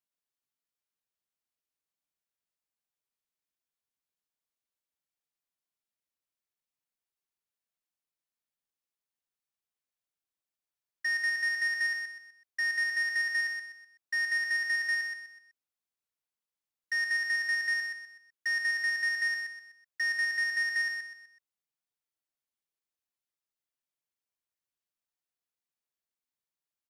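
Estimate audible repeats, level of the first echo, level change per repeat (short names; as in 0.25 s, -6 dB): 4, -6.0 dB, -9.0 dB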